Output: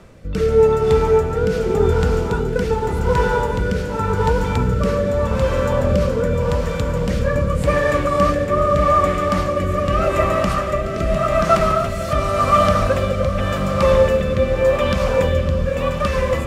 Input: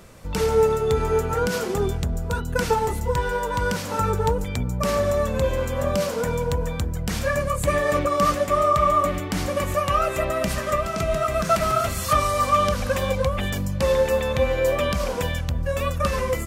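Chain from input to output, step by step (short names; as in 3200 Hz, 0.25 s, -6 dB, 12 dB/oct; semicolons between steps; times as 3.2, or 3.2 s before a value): LPF 2800 Hz 6 dB/oct; on a send: diffused feedback echo 0.587 s, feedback 66%, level -6 dB; on the sum: rotary speaker horn 0.85 Hz; gain +6 dB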